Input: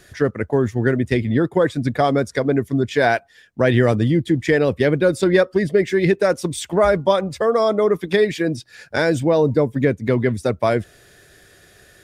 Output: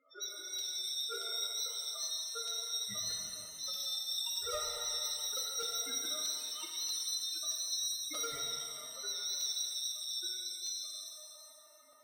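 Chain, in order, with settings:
band-splitting scrambler in four parts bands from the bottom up 2341
loudspeaker in its box 300–3,700 Hz, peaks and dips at 310 Hz +5 dB, 500 Hz +6 dB, 760 Hz −6 dB, 1,200 Hz +10 dB, 1,900 Hz −3 dB, 2,900 Hz −5 dB
mains-hum notches 60/120/180/240/300/360/420/480 Hz
spectral peaks only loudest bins 2
gain into a clipping stage and back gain 29 dB
ring modulation 920 Hz
regular buffer underruns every 0.63 s, samples 256, repeat, from 0:00.58
reverb with rising layers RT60 2.2 s, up +7 semitones, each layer −8 dB, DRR −1 dB
level −5.5 dB

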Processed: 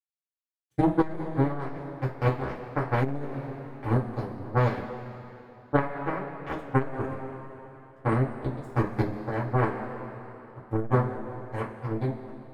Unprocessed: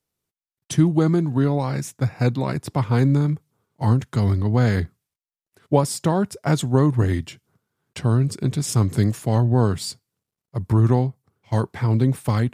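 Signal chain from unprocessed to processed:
fade-out on the ending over 0.74 s
high-pass filter 150 Hz 6 dB per octave
parametric band 6,000 Hz −14.5 dB 2.8 octaves
mains-hum notches 50/100/150/200/250/300/350 Hz
automatic gain control gain up to 10 dB
power curve on the samples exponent 3
coupled-rooms reverb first 0.23 s, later 3.1 s, from −18 dB, DRR −6 dB
saturating transformer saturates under 250 Hz
level −5.5 dB

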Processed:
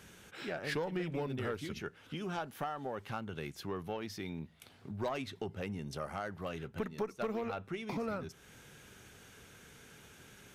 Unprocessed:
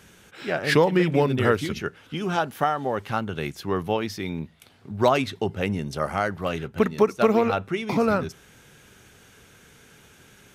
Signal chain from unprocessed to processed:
one-sided soft clipper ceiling −11 dBFS
downward compressor 2 to 1, threshold −39 dBFS, peak gain reduction 13 dB
level −4 dB

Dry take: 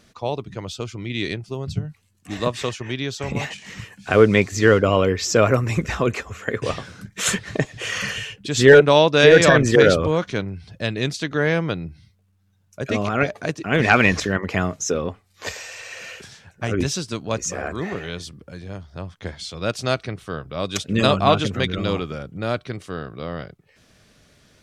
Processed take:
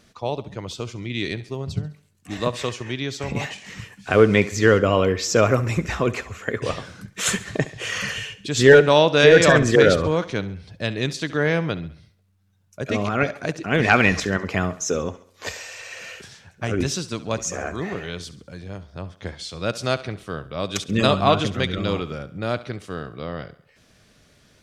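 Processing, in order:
feedback echo with a high-pass in the loop 68 ms, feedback 48%, high-pass 160 Hz, level −16.5 dB
level −1 dB

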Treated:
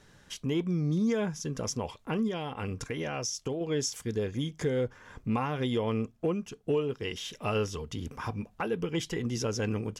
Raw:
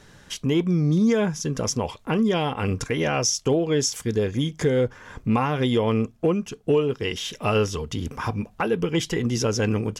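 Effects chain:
0:02.27–0:03.61: downward compressor, threshold −22 dBFS, peak gain reduction 6 dB
level −8 dB

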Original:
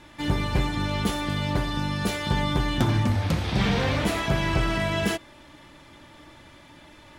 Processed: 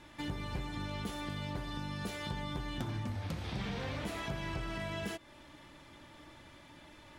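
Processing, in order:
downward compressor 3 to 1, threshold −32 dBFS, peak gain reduction 11 dB
level −6 dB

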